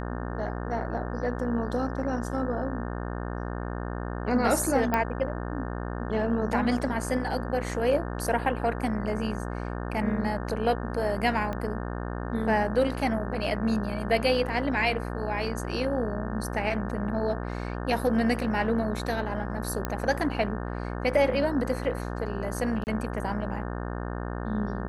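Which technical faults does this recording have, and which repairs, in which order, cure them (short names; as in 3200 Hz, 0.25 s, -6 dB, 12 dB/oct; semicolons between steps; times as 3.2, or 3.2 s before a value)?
buzz 60 Hz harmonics 30 -33 dBFS
4.94 pop -13 dBFS
11.53 pop -20 dBFS
19.85 pop -14 dBFS
22.84–22.87 gap 29 ms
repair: de-click; de-hum 60 Hz, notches 30; interpolate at 22.84, 29 ms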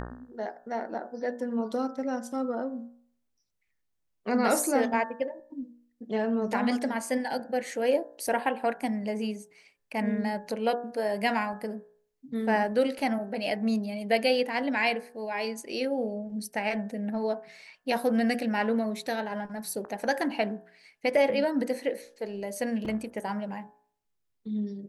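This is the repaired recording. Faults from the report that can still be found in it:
11.53 pop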